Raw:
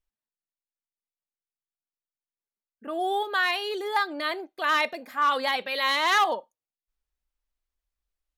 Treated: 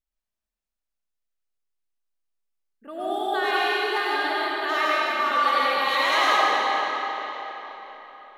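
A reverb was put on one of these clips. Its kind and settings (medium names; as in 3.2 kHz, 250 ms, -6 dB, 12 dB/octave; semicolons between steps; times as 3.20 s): algorithmic reverb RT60 4.2 s, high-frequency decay 0.8×, pre-delay 55 ms, DRR -8.5 dB; trim -5.5 dB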